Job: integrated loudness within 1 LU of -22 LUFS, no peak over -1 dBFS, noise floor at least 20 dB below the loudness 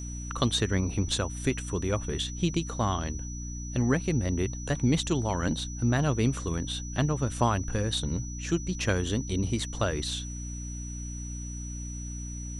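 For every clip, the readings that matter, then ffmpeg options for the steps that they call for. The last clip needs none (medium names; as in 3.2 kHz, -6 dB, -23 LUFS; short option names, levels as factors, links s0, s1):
hum 60 Hz; highest harmonic 300 Hz; hum level -34 dBFS; steady tone 5.9 kHz; tone level -42 dBFS; loudness -30.0 LUFS; peak level -11.0 dBFS; loudness target -22.0 LUFS
-> -af "bandreject=f=60:t=h:w=6,bandreject=f=120:t=h:w=6,bandreject=f=180:t=h:w=6,bandreject=f=240:t=h:w=6,bandreject=f=300:t=h:w=6"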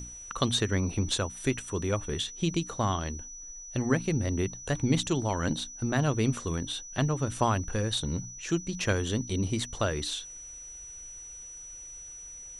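hum not found; steady tone 5.9 kHz; tone level -42 dBFS
-> -af "bandreject=f=5900:w=30"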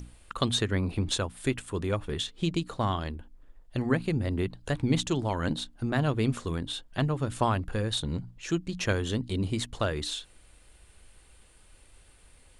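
steady tone not found; loudness -30.0 LUFS; peak level -11.5 dBFS; loudness target -22.0 LUFS
-> -af "volume=2.51"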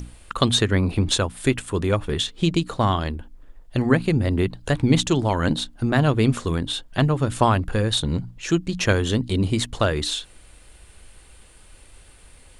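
loudness -22.0 LUFS; peak level -3.5 dBFS; noise floor -49 dBFS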